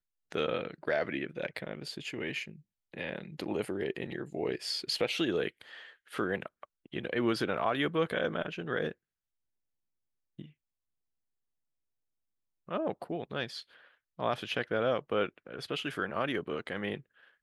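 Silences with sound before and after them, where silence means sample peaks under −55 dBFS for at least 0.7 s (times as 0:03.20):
0:08.92–0:10.39
0:10.51–0:12.68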